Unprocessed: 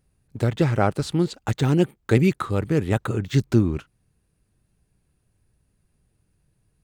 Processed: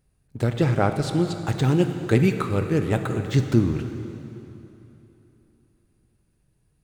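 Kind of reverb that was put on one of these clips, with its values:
dense smooth reverb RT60 3.2 s, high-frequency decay 0.85×, DRR 6.5 dB
level −1 dB

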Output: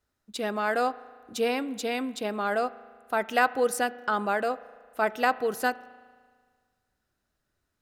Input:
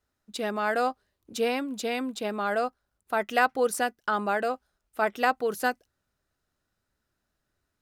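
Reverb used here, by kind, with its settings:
spring reverb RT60 1.7 s, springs 37 ms, chirp 55 ms, DRR 17.5 dB

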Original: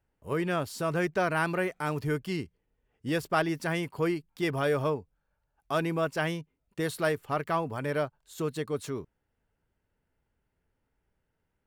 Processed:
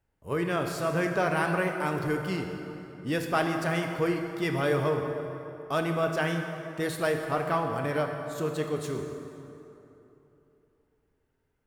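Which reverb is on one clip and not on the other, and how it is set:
dense smooth reverb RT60 3.1 s, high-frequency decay 0.6×, DRR 3 dB

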